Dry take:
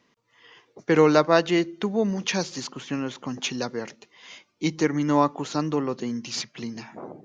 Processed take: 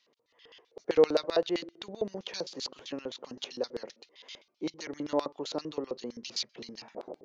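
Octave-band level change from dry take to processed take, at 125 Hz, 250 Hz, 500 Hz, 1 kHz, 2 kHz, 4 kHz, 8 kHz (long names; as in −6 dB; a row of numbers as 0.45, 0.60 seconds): −19.5 dB, −13.0 dB, −6.0 dB, −13.5 dB, −14.5 dB, −5.0 dB, can't be measured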